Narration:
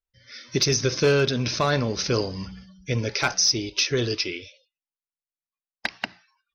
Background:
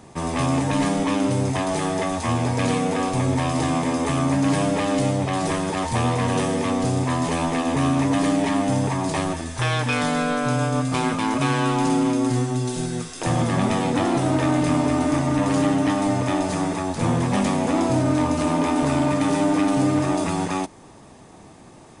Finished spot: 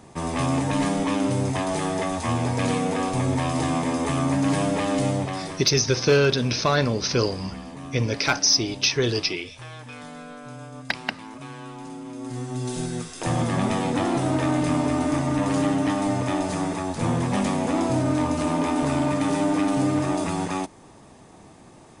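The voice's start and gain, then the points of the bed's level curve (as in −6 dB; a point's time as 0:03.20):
5.05 s, +1.5 dB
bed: 0:05.18 −2 dB
0:05.75 −17.5 dB
0:12.04 −17.5 dB
0:12.72 −2.5 dB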